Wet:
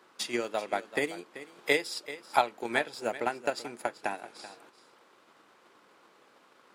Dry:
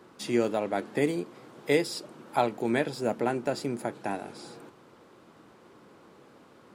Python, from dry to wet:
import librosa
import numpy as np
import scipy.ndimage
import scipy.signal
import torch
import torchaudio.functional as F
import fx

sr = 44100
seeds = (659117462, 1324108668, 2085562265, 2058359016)

p1 = fx.highpass(x, sr, hz=1500.0, slope=6)
p2 = fx.transient(p1, sr, attack_db=8, sustain_db=-3)
p3 = fx.high_shelf(p2, sr, hz=4600.0, db=-5.0)
p4 = p3 + fx.echo_single(p3, sr, ms=385, db=-15.0, dry=0)
y = p4 * librosa.db_to_amplitude(2.0)